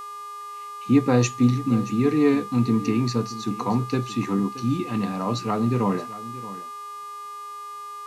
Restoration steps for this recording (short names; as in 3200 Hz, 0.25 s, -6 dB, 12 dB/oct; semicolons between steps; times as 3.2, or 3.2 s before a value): de-hum 415.6 Hz, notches 31; notch 1200 Hz, Q 30; inverse comb 0.626 s -16 dB